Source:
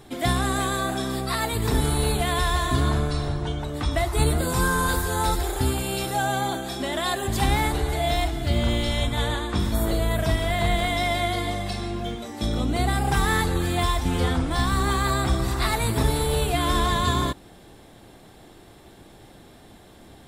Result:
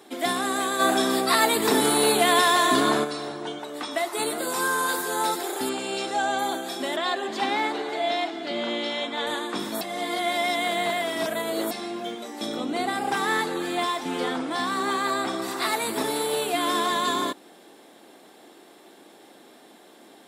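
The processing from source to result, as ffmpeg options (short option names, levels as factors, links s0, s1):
-filter_complex "[0:a]asplit=3[s0][s1][s2];[s0]afade=t=out:st=0.79:d=0.02[s3];[s1]acontrast=75,afade=t=in:st=0.79:d=0.02,afade=t=out:st=3.03:d=0.02[s4];[s2]afade=t=in:st=3.03:d=0.02[s5];[s3][s4][s5]amix=inputs=3:normalize=0,asettb=1/sr,asplit=3[s6][s7][s8];[s6]atrim=end=3.584[s9];[s7]atrim=start=3.58:end=4.98,asetpts=PTS-STARTPTS,afade=t=in:d=0.004:c=qsin,afade=t=out:st=1.396:d=0.004:c=qsin,lowshelf=f=210:g=-9[s10];[s8]atrim=start=4.976[s11];[s9][s10]acrossfade=d=0.004:c1=hsin:c2=qsin[s12];[s12][s11]acrossfade=d=0.004:c1=qsin:c2=hsin,asettb=1/sr,asplit=3[s13][s14][s15];[s13]atrim=end=5.694[s16];[s14]atrim=start=5.69:end=6.39,asetpts=PTS-STARTPTS,afade=t=in:d=0.004:c=qsin,afade=t=out:st=0.696:d=0.004:c=qsin,lowpass=f=7800:w=0.5412,lowpass=f=7800:w=1.3066[s17];[s15]atrim=start=6.386[s18];[s16][s17]acrossfade=d=0.004:c1=hsin:c2=qsin[s19];[s19][s18]acrossfade=d=0.004:c1=qsin:c2=hsin,asettb=1/sr,asplit=3[s20][s21][s22];[s20]atrim=end=6.964[s23];[s21]atrim=start=6.96:end=9.27,asetpts=PTS-STARTPTS,afade=t=in:d=0.004:c=qsin,afade=t=out:st=2.306:d=0.004:c=qsin,acrossover=split=160 5900:gain=0.0794 1 0.0708[s24][s25][s26];[s24][s25][s26]amix=inputs=3:normalize=0[s27];[s22]atrim=start=9.266[s28];[s23][s27]acrossfade=d=0.004:c1=hsin:c2=qsin[s29];[s29][s28]acrossfade=d=0.004:c1=qsin:c2=hsin,asettb=1/sr,asplit=3[s30][s31][s32];[s30]atrim=end=12.564[s33];[s31]atrim=start=12.56:end=15.42,asetpts=PTS-STARTPTS,afade=t=in:d=0.004:c=qsin,afade=t=out:st=2.856:d=0.004:c=qsin,highshelf=f=8500:g=-9.5[s34];[s32]atrim=start=15.416[s35];[s33][s34]acrossfade=d=0.004:c1=hsin:c2=qsin[s36];[s36][s35]acrossfade=d=0.004:c1=qsin:c2=hsin,asplit=3[s37][s38][s39];[s37]atrim=end=9.812[s40];[s38]atrim=start=9.808:end=11.712,asetpts=PTS-STARTPTS,areverse[s41];[s39]atrim=start=11.708[s42];[s40][s41]acrossfade=d=0.004:c1=hsin:c2=hsin[s43];[s43][s42]acrossfade=d=0.004:c1=hsin:c2=hsin,highpass=f=250:w=0.5412,highpass=f=250:w=1.3066"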